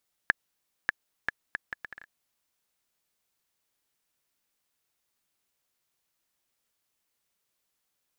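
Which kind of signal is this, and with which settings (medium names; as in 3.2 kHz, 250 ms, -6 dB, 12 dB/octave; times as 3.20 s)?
bouncing ball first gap 0.59 s, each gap 0.67, 1.71 kHz, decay 18 ms -6.5 dBFS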